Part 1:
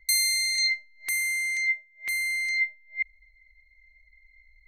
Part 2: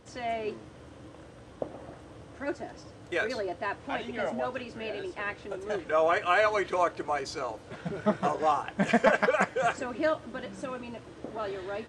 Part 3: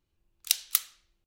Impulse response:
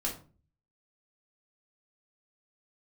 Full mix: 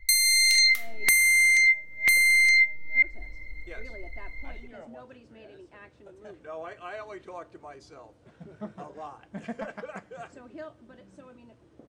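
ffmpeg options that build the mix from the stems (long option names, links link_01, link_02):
-filter_complex "[0:a]dynaudnorm=framelen=240:gausssize=3:maxgain=9.5dB,volume=2.5dB,asplit=2[link_01][link_02];[link_02]volume=-17.5dB[link_03];[1:a]highshelf=frequency=7900:gain=3.5,adelay=550,volume=-18dB,asplit=2[link_04][link_05];[link_05]volume=-19.5dB[link_06];[2:a]equalizer=frequency=1900:width=1.8:gain=12,volume=-13.5dB,asplit=2[link_07][link_08];[link_08]volume=-3dB[link_09];[3:a]atrim=start_sample=2205[link_10];[link_03][link_06][link_09]amix=inputs=3:normalize=0[link_11];[link_11][link_10]afir=irnorm=-1:irlink=0[link_12];[link_01][link_04][link_07][link_12]amix=inputs=4:normalize=0,lowshelf=frequency=430:gain=8.5,acompressor=threshold=-18dB:ratio=5"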